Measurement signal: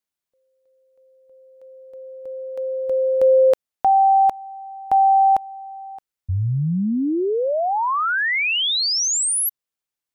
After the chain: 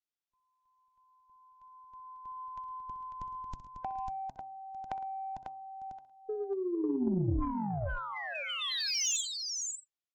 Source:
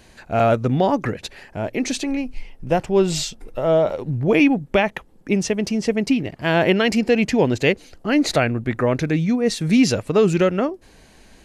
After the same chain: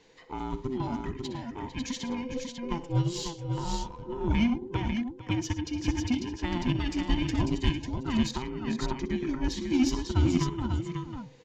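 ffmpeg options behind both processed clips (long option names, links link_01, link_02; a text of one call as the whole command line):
ffmpeg -i in.wav -filter_complex "[0:a]afftfilt=real='real(if(between(b,1,1008),(2*floor((b-1)/24)+1)*24-b,b),0)':imag='imag(if(between(b,1,1008),(2*floor((b-1)/24)+1)*24-b,b),0)*if(between(b,1,1008),-1,1)':win_size=2048:overlap=0.75,acrossover=split=350|5100[link_01][link_02][link_03];[link_02]acompressor=threshold=-30dB:ratio=8:attack=62:release=364:knee=1:detection=rms[link_04];[link_01][link_04][link_03]amix=inputs=3:normalize=0,equalizer=frequency=3300:width_type=o:width=0.63:gain=3,bandreject=frequency=134.6:width_type=h:width=4,bandreject=frequency=269.2:width_type=h:width=4,bandreject=frequency=403.8:width_type=h:width=4,bandreject=frequency=538.4:width_type=h:width=4,bandreject=frequency=673:width_type=h:width=4,bandreject=frequency=807.6:width_type=h:width=4,bandreject=frequency=942.2:width_type=h:width=4,bandreject=frequency=1076.8:width_type=h:width=4,bandreject=frequency=1211.4:width_type=h:width=4,aresample=16000,aresample=44100,asplit=2[link_05][link_06];[link_06]aecho=0:1:63|110|451|546:0.224|0.15|0.224|0.596[link_07];[link_05][link_07]amix=inputs=2:normalize=0,aeval=exprs='0.668*(cos(1*acos(clip(val(0)/0.668,-1,1)))-cos(1*PI/2))+0.0299*(cos(7*acos(clip(val(0)/0.668,-1,1)))-cos(7*PI/2))':channel_layout=same,volume=-8dB" out.wav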